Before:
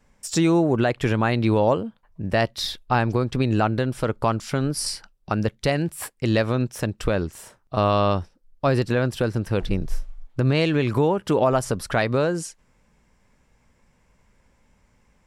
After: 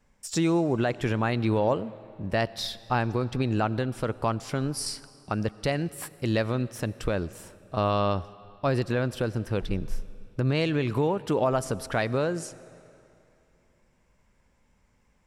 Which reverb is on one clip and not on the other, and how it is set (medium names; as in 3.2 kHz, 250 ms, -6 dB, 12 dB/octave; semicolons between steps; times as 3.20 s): algorithmic reverb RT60 2.8 s, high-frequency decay 0.9×, pre-delay 45 ms, DRR 18.5 dB; trim -5 dB